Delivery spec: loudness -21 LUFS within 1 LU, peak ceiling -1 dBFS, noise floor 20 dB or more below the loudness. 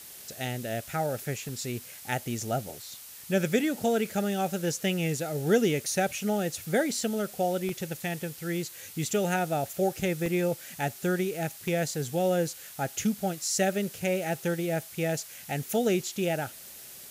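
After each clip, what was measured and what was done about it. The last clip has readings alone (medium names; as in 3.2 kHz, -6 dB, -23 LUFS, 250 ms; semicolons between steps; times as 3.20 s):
dropouts 5; longest dropout 1.4 ms; noise floor -46 dBFS; noise floor target -50 dBFS; loudness -29.5 LUFS; peak level -11.5 dBFS; loudness target -21.0 LUFS
-> interpolate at 0.47/1.49/7.69/10.26/11.68 s, 1.4 ms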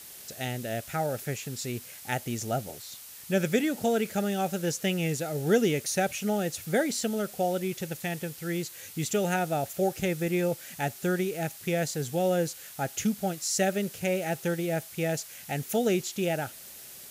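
dropouts 0; noise floor -46 dBFS; noise floor target -50 dBFS
-> noise print and reduce 6 dB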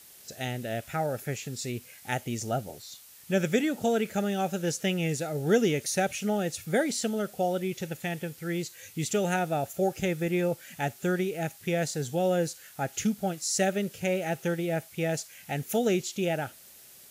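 noise floor -52 dBFS; loudness -30.0 LUFS; peak level -11.5 dBFS; loudness target -21.0 LUFS
-> trim +9 dB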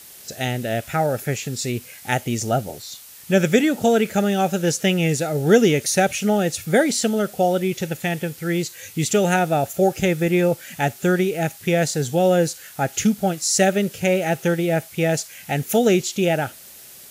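loudness -21.0 LUFS; peak level -2.5 dBFS; noise floor -43 dBFS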